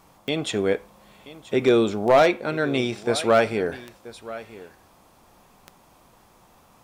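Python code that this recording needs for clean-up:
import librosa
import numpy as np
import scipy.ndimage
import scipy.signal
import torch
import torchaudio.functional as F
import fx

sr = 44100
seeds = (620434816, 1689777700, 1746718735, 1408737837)

y = fx.fix_declip(x, sr, threshold_db=-9.5)
y = fx.fix_declick_ar(y, sr, threshold=10.0)
y = fx.fix_echo_inverse(y, sr, delay_ms=980, level_db=-17.5)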